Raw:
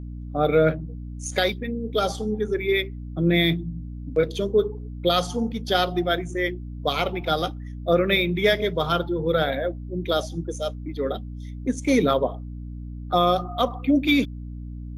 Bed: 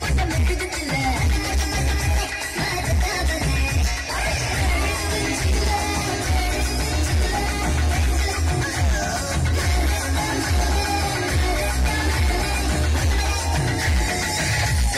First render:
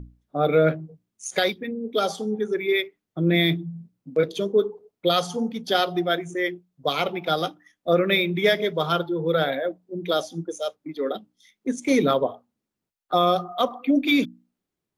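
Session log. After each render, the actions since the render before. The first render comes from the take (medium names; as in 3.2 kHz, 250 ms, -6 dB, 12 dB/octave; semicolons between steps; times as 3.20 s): hum notches 60/120/180/240/300 Hz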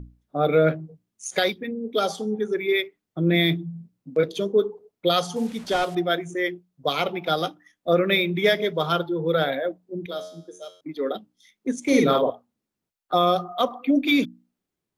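5.36–5.95 s: one-bit delta coder 64 kbps, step -38.5 dBFS; 10.06–10.81 s: feedback comb 90 Hz, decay 0.64 s, mix 80%; 11.85–12.30 s: doubling 49 ms -3 dB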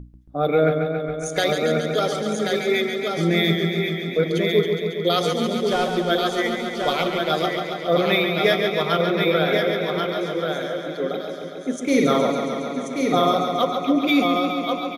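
delay 1084 ms -4.5 dB; modulated delay 138 ms, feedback 79%, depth 56 cents, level -7 dB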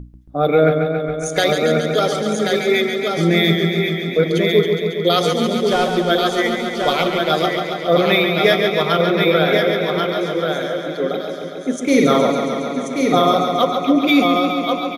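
trim +4.5 dB; peak limiter -3 dBFS, peak gain reduction 1.5 dB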